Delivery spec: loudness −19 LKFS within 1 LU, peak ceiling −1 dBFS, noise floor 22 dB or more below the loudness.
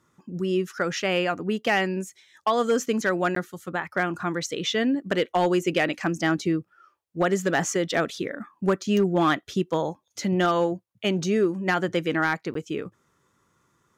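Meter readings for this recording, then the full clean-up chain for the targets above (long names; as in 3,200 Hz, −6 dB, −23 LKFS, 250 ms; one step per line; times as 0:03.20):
share of clipped samples 0.4%; peaks flattened at −14.0 dBFS; number of dropouts 2; longest dropout 13 ms; integrated loudness −25.5 LKFS; sample peak −14.0 dBFS; target loudness −19.0 LKFS
→ clipped peaks rebuilt −14 dBFS
repair the gap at 0:03.35/0:12.54, 13 ms
level +6.5 dB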